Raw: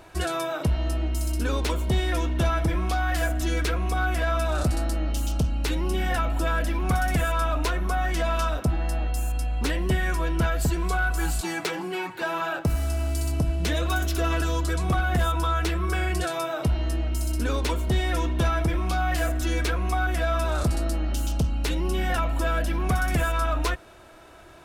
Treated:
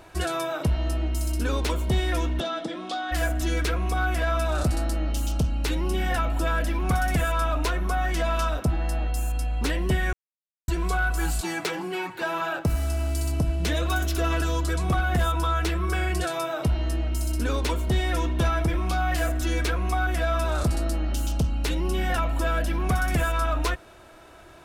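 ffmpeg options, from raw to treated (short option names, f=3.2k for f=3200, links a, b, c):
-filter_complex "[0:a]asplit=3[a][b][c];[a]afade=t=out:st=2.39:d=0.02[d];[b]highpass=f=230:w=0.5412,highpass=f=230:w=1.3066,equalizer=f=390:t=q:w=4:g=-5,equalizer=f=1k:t=q:w=4:g=-8,equalizer=f=1.6k:t=q:w=4:g=-5,equalizer=f=2.3k:t=q:w=4:g=-9,equalizer=f=3.6k:t=q:w=4:g=7,equalizer=f=5.9k:t=q:w=4:g=-5,lowpass=f=7.5k:w=0.5412,lowpass=f=7.5k:w=1.3066,afade=t=in:st=2.39:d=0.02,afade=t=out:st=3.11:d=0.02[e];[c]afade=t=in:st=3.11:d=0.02[f];[d][e][f]amix=inputs=3:normalize=0,asplit=3[g][h][i];[g]atrim=end=10.13,asetpts=PTS-STARTPTS,afade=t=out:st=10.126:d=0.004:c=hsin[j];[h]atrim=start=10.13:end=10.68,asetpts=PTS-STARTPTS,volume=0[k];[i]atrim=start=10.68,asetpts=PTS-STARTPTS,afade=t=in:d=0.004:c=hsin[l];[j][k][l]concat=n=3:v=0:a=1"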